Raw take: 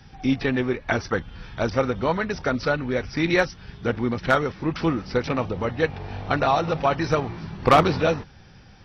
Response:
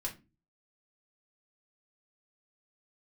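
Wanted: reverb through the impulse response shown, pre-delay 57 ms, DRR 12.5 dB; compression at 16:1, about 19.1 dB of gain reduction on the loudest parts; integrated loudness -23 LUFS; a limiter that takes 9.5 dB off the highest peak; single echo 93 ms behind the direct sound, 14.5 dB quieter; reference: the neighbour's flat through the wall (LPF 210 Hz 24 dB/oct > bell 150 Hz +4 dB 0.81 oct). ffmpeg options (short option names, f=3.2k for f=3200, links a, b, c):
-filter_complex "[0:a]acompressor=threshold=-30dB:ratio=16,alimiter=level_in=2dB:limit=-24dB:level=0:latency=1,volume=-2dB,aecho=1:1:93:0.188,asplit=2[a][b];[1:a]atrim=start_sample=2205,adelay=57[c];[b][c]afir=irnorm=-1:irlink=0,volume=-13.5dB[d];[a][d]amix=inputs=2:normalize=0,lowpass=f=210:w=0.5412,lowpass=f=210:w=1.3066,equalizer=f=150:t=o:w=0.81:g=4,volume=17.5dB"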